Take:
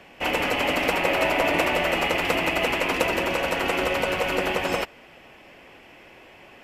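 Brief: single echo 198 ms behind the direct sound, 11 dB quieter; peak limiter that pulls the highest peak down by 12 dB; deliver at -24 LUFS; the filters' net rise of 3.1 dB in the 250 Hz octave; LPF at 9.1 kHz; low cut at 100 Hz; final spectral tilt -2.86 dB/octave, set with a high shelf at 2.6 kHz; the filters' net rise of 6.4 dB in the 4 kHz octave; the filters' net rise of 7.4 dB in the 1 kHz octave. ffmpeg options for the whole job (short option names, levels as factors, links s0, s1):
-af "highpass=100,lowpass=9100,equalizer=f=250:t=o:g=3.5,equalizer=f=1000:t=o:g=8.5,highshelf=f=2600:g=3.5,equalizer=f=4000:t=o:g=6,alimiter=limit=0.211:level=0:latency=1,aecho=1:1:198:0.282,volume=0.794"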